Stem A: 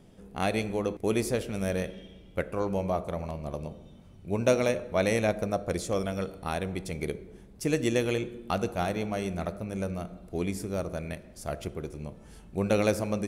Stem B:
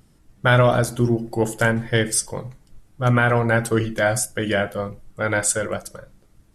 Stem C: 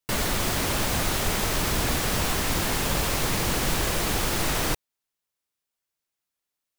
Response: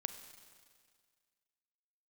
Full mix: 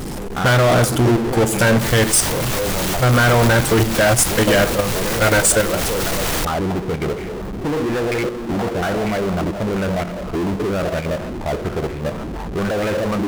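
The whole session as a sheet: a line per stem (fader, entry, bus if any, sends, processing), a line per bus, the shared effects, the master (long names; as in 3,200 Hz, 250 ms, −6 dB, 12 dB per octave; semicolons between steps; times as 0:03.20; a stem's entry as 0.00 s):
−5.0 dB, 0.00 s, no send, hard clipping −25 dBFS, distortion −9 dB; low-pass on a step sequencer 8.5 Hz 330–2,000 Hz
+2.5 dB, 0.00 s, no send, no processing
−5.5 dB, 1.70 s, no send, no processing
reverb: not used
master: output level in coarse steps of 20 dB; power curve on the samples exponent 0.35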